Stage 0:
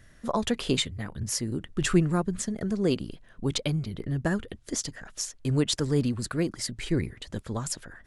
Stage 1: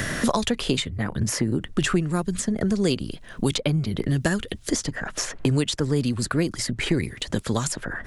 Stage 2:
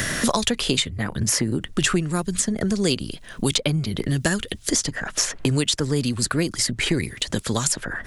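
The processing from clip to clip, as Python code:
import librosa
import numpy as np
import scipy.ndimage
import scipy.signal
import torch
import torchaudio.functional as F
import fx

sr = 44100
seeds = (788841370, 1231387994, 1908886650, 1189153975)

y1 = fx.band_squash(x, sr, depth_pct=100)
y1 = y1 * librosa.db_to_amplitude(3.5)
y2 = fx.high_shelf(y1, sr, hz=2400.0, db=7.5)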